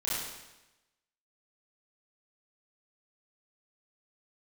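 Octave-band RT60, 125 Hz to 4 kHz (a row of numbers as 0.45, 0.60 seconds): 1.0, 1.0, 1.0, 1.0, 1.0, 0.95 seconds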